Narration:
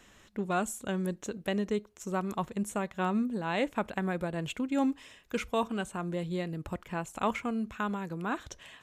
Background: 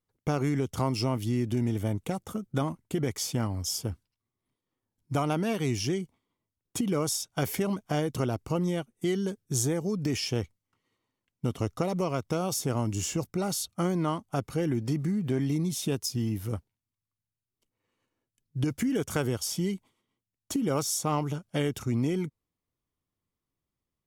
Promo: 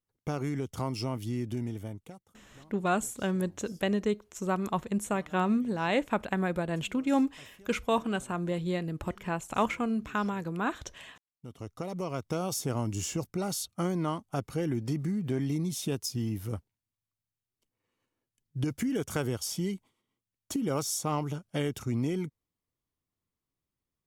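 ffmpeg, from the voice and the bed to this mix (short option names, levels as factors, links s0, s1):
-filter_complex "[0:a]adelay=2350,volume=1.33[s0];[1:a]volume=9.44,afade=t=out:st=1.49:d=0.81:silence=0.0794328,afade=t=in:st=11.3:d=1.08:silence=0.0595662[s1];[s0][s1]amix=inputs=2:normalize=0"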